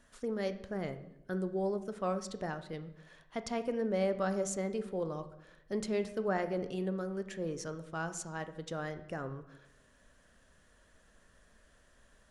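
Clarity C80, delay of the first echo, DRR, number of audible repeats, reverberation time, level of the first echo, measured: 15.5 dB, no echo audible, 10.0 dB, no echo audible, 0.85 s, no echo audible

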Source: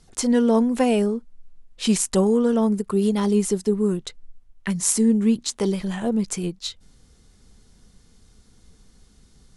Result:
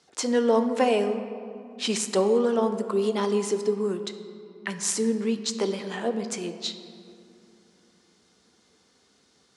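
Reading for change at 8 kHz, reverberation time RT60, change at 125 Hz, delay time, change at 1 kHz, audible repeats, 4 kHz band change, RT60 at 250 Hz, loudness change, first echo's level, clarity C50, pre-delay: −5.0 dB, 2.5 s, −10.0 dB, no echo audible, +1.0 dB, no echo audible, 0.0 dB, 3.7 s, −4.5 dB, no echo audible, 9.5 dB, 7 ms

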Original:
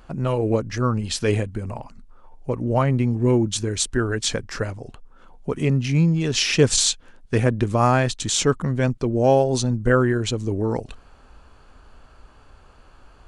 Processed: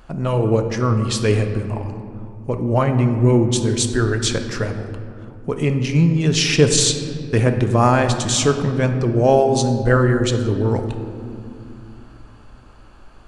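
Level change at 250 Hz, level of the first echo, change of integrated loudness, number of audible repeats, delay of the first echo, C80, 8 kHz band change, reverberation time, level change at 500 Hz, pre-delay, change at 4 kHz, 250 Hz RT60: +3.5 dB, no echo audible, +3.5 dB, no echo audible, no echo audible, 9.0 dB, +2.5 dB, 2.5 s, +3.5 dB, 5 ms, +2.5 dB, 4.1 s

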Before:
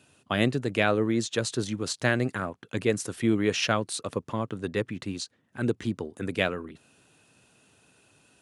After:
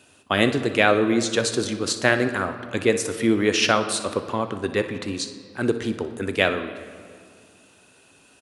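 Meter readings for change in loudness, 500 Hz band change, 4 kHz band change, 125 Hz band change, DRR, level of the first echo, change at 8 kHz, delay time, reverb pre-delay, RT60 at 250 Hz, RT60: +6.0 dB, +6.5 dB, +7.0 dB, 0.0 dB, 7.5 dB, −14.5 dB, +7.0 dB, 61 ms, 5 ms, 2.5 s, 2.1 s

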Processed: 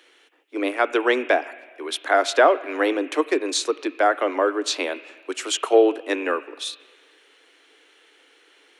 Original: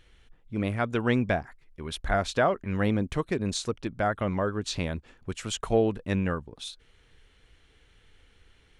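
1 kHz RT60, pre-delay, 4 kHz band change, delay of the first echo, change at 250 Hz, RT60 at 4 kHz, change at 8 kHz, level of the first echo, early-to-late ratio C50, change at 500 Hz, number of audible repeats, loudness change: 1.6 s, 8 ms, +8.5 dB, no echo audible, +2.0 dB, 1.5 s, +8.5 dB, no echo audible, 13.0 dB, +8.5 dB, no echo audible, +6.5 dB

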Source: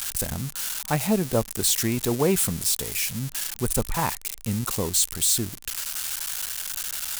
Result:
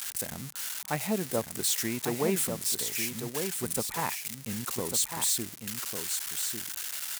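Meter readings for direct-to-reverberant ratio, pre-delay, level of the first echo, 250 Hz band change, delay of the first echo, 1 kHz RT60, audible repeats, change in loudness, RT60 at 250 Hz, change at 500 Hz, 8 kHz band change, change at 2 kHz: no reverb audible, no reverb audible, −6.5 dB, −7.0 dB, 1,148 ms, no reverb audible, 1, −5.5 dB, no reverb audible, −5.5 dB, −5.0 dB, −3.5 dB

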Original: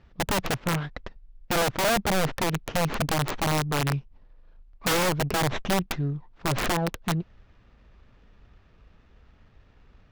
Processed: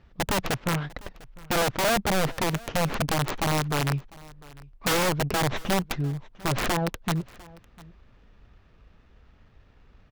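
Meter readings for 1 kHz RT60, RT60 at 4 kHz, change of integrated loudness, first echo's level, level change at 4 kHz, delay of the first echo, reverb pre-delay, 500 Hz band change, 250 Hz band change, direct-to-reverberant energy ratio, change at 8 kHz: no reverb audible, no reverb audible, 0.0 dB, −22.5 dB, 0.0 dB, 700 ms, no reverb audible, 0.0 dB, 0.0 dB, no reverb audible, 0.0 dB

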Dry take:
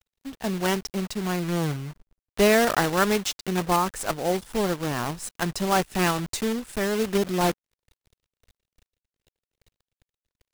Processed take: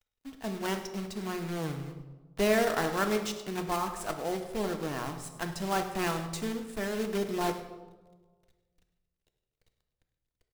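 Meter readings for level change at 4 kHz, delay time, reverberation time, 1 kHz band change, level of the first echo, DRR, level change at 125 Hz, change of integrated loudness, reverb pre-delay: −8.0 dB, 102 ms, 1.3 s, −7.0 dB, −16.5 dB, 5.5 dB, −8.5 dB, −7.0 dB, 3 ms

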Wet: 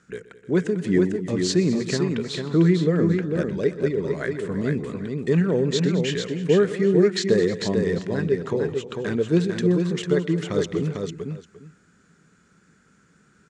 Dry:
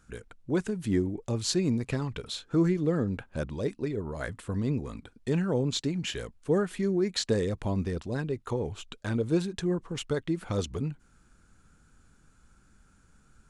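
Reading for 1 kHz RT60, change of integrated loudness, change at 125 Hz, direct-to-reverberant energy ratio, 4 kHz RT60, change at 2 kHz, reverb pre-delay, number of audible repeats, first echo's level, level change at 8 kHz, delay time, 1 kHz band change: no reverb audible, +7.5 dB, +6.5 dB, no reverb audible, no reverb audible, +8.5 dB, no reverb audible, 5, −17.5 dB, +3.5 dB, 125 ms, +3.5 dB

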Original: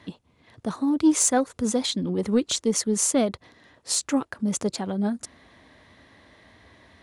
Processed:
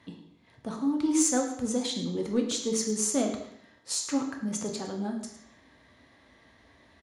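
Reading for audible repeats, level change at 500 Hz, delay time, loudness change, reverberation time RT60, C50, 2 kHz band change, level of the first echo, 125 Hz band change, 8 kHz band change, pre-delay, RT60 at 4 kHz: 1, −5.0 dB, 107 ms, −5.0 dB, 0.70 s, 6.0 dB, −5.5 dB, −13.5 dB, −6.5 dB, −4.5 dB, 3 ms, 0.70 s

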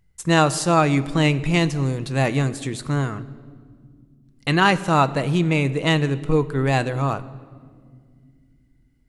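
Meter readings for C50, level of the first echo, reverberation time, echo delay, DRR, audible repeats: 17.0 dB, no echo audible, 2.0 s, no echo audible, 12.0 dB, no echo audible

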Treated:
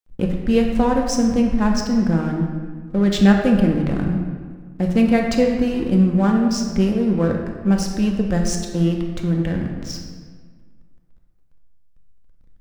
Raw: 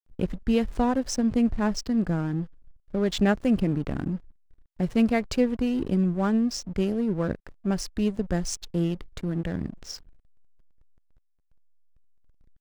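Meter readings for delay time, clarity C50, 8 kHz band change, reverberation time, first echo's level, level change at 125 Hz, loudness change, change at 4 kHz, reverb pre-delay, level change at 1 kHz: no echo audible, 3.5 dB, +6.0 dB, 1.7 s, no echo audible, +8.5 dB, +7.5 dB, +6.0 dB, 4 ms, +7.0 dB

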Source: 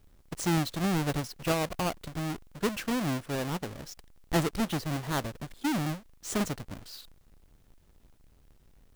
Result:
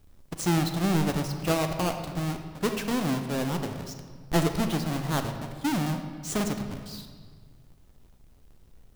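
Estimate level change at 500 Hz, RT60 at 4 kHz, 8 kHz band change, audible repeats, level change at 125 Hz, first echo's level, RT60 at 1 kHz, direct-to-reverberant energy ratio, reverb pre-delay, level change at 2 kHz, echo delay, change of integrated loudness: +3.0 dB, 1.2 s, +2.5 dB, no echo audible, +4.0 dB, no echo audible, 1.5 s, 5.5 dB, 11 ms, +1.5 dB, no echo audible, +3.0 dB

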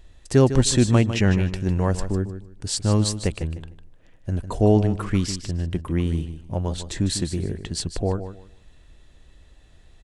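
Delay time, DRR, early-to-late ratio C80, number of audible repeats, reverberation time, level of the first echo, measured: 152 ms, no reverb audible, no reverb audible, 2, no reverb audible, −11.0 dB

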